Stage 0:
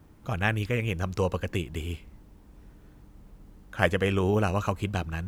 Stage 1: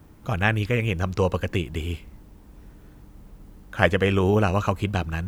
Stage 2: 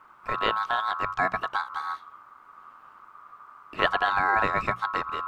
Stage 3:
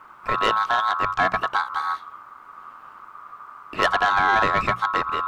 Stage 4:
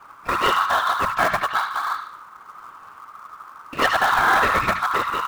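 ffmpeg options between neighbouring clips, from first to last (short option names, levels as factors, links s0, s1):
-filter_complex "[0:a]acrossover=split=6000[s0][s1];[s1]acompressor=threshold=0.00158:ratio=4:attack=1:release=60[s2];[s0][s2]amix=inputs=2:normalize=0,highshelf=f=12000:g=4.5,volume=1.68"
-af "aeval=exprs='val(0)*sin(2*PI*1200*n/s)':c=same,lowpass=f=2600:p=1,bandreject=f=60:t=h:w=6,bandreject=f=120:t=h:w=6,bandreject=f=180:t=h:w=6"
-af "asoftclip=type=tanh:threshold=0.119,volume=2.24"
-filter_complex "[0:a]afftfilt=real='hypot(re,im)*cos(2*PI*random(0))':imag='hypot(re,im)*sin(2*PI*random(1))':win_size=512:overlap=0.75,acrossover=split=1000[s0][s1];[s0]acrusher=bits=2:mode=log:mix=0:aa=0.000001[s2];[s1]aecho=1:1:74|148|222|296|370:0.531|0.223|0.0936|0.0393|0.0165[s3];[s2][s3]amix=inputs=2:normalize=0,volume=2.11"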